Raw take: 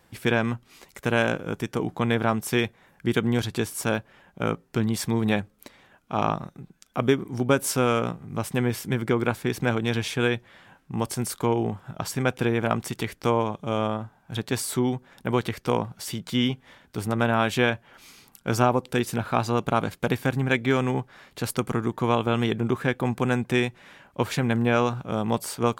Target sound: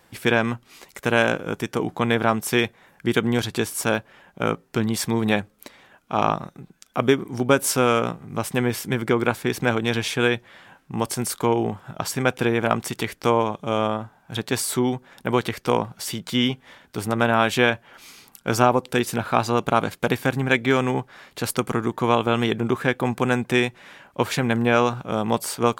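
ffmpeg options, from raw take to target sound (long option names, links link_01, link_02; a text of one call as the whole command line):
ffmpeg -i in.wav -af "lowshelf=frequency=200:gain=-6.5,volume=4.5dB" out.wav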